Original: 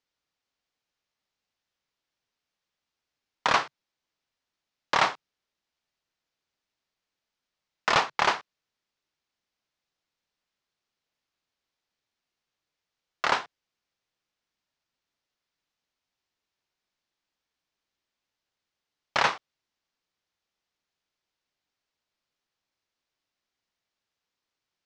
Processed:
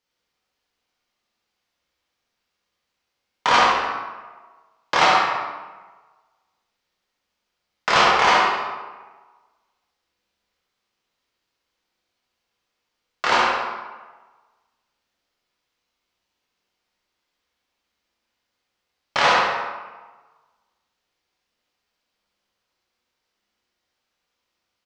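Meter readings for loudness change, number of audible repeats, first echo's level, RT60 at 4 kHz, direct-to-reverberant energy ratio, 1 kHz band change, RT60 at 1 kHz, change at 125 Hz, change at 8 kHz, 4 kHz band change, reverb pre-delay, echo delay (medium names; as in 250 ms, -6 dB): +7.0 dB, 1, -4.5 dB, 0.85 s, -6.0 dB, +10.0 dB, 1.4 s, +6.0 dB, +7.0 dB, +8.5 dB, 12 ms, 69 ms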